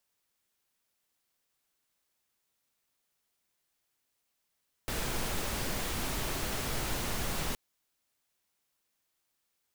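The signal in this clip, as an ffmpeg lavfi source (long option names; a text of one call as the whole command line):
ffmpeg -f lavfi -i "anoisesrc=color=pink:amplitude=0.108:duration=2.67:sample_rate=44100:seed=1" out.wav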